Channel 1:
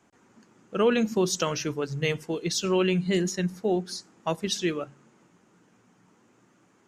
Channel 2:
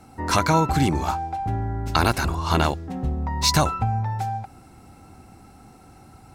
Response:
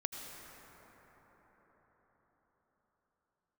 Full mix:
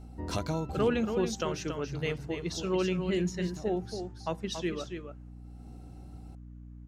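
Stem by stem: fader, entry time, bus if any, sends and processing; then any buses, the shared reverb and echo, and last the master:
-5.5 dB, 0.00 s, no send, echo send -7.5 dB, gate -51 dBFS, range -10 dB
-4.5 dB, 0.00 s, no send, no echo send, high-order bell 1.4 kHz -9.5 dB; auto duck -22 dB, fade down 1.75 s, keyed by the first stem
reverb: none
echo: delay 280 ms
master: treble shelf 4.8 kHz -9 dB; hum 60 Hz, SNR 13 dB

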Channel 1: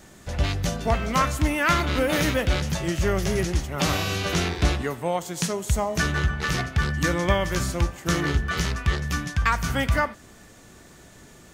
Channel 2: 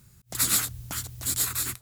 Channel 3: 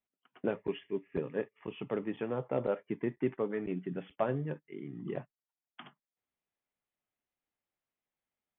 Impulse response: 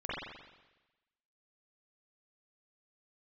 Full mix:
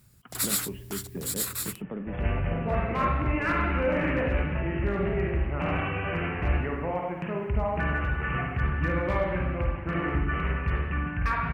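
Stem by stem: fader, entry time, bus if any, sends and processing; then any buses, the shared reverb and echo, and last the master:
-6.5 dB, 1.80 s, bus A, send -3.5 dB, saturation -11 dBFS, distortion -23 dB; steep low-pass 2.8 kHz 96 dB/octave; hard clipper -15.5 dBFS, distortion -26 dB
-3.5 dB, 0.00 s, no bus, no send, peaking EQ 6.4 kHz -5.5 dB 0.22 oct
-5.0 dB, 0.00 s, bus A, send -19 dB, peaking EQ 190 Hz +13 dB 0.77 oct; three bands compressed up and down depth 70%
bus A: 0.0 dB, peak limiter -26.5 dBFS, peak gain reduction 9.5 dB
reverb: on, RT60 1.1 s, pre-delay 42 ms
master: none

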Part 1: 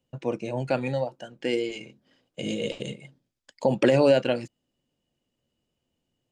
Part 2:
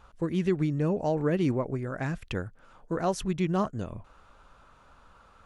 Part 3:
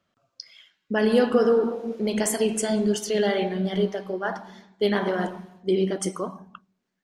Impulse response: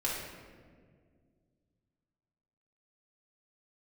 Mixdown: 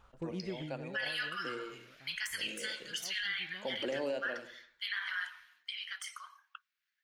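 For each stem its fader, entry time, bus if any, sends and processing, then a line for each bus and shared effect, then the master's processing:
-16.0 dB, 0.00 s, no send, echo send -11.5 dB, high-pass 270 Hz 12 dB/octave
-7.0 dB, 0.00 s, no send, no echo send, auto duck -22 dB, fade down 1.50 s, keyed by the third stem
+2.5 dB, 0.00 s, no send, no echo send, steep high-pass 1.5 kHz 36 dB/octave; de-esser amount 55%; peaking EQ 7.9 kHz -11 dB 1.4 oct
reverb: none
echo: feedback delay 83 ms, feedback 37%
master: peak limiter -26.5 dBFS, peak gain reduction 9.5 dB

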